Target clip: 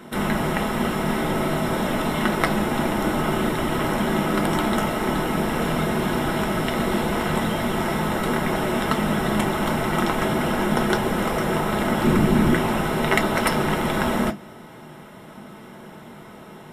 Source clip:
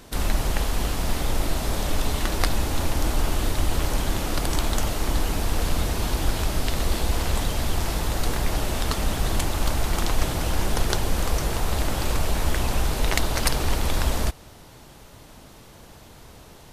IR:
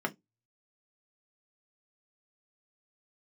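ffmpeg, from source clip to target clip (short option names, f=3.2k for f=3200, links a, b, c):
-filter_complex "[0:a]asettb=1/sr,asplit=3[a][b][c];[a]atrim=end=12.044[d];[b]atrim=start=12.04:end=12.56,asetpts=PTS-STARTPTS,afade=t=in:d=0.004:c=qsin,afade=t=out:st=0.516:d=0.004:c=qsin,lowshelf=f=400:t=q:w=1.5:g=6.5[e];[c]atrim=start=12.556[f];[d][e]acrossfade=d=0.004:c1=hsin:c2=qsin[g];[g][f]acrossfade=d=0.004:c1=qsin:c2=hsin[h];[1:a]atrim=start_sample=2205[i];[h][i]afir=irnorm=-1:irlink=0"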